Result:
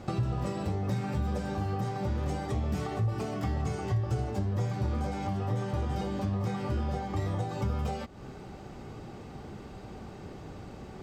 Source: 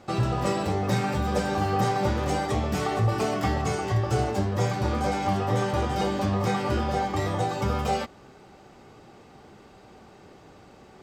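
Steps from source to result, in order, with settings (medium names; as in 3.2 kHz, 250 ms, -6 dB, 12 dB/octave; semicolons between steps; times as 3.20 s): compression 6:1, threshold -37 dBFS, peak gain reduction 16.5 dB; bass shelf 240 Hz +11.5 dB; trim +1.5 dB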